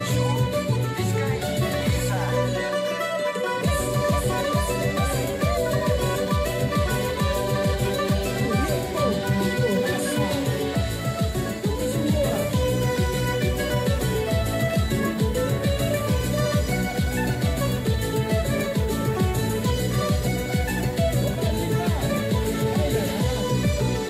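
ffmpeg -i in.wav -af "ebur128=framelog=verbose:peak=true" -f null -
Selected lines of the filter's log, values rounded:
Integrated loudness:
  I:         -23.8 LUFS
  Threshold: -33.8 LUFS
Loudness range:
  LRA:         0.7 LU
  Threshold: -43.8 LUFS
  LRA low:   -24.1 LUFS
  LRA high:  -23.4 LUFS
True peak:
  Peak:      -10.6 dBFS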